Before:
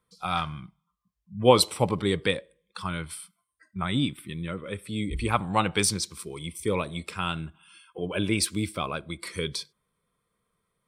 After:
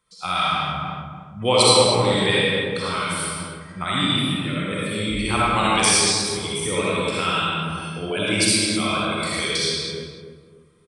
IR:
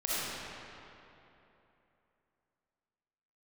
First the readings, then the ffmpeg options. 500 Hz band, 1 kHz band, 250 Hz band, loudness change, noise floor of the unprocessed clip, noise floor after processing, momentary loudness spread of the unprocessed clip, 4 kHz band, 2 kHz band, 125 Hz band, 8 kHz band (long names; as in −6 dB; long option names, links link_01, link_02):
+6.0 dB, +7.5 dB, +5.5 dB, +7.5 dB, −80 dBFS, −48 dBFS, 14 LU, +11.5 dB, +10.5 dB, +4.5 dB, +10.0 dB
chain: -filter_complex "[1:a]atrim=start_sample=2205,afade=type=out:start_time=0.38:duration=0.01,atrim=end_sample=17199[link_01];[0:a][link_01]afir=irnorm=-1:irlink=0,aresample=22050,aresample=44100,tiltshelf=frequency=1400:gain=-5,asplit=2[link_02][link_03];[link_03]adelay=293,lowpass=frequency=970:poles=1,volume=-5dB,asplit=2[link_04][link_05];[link_05]adelay=293,lowpass=frequency=970:poles=1,volume=0.38,asplit=2[link_06][link_07];[link_07]adelay=293,lowpass=frequency=970:poles=1,volume=0.38,asplit=2[link_08][link_09];[link_09]adelay=293,lowpass=frequency=970:poles=1,volume=0.38,asplit=2[link_10][link_11];[link_11]adelay=293,lowpass=frequency=970:poles=1,volume=0.38[link_12];[link_02][link_04][link_06][link_08][link_10][link_12]amix=inputs=6:normalize=0,asplit=2[link_13][link_14];[link_14]acompressor=threshold=-29dB:ratio=6,volume=2dB[link_15];[link_13][link_15]amix=inputs=2:normalize=0,volume=-2dB"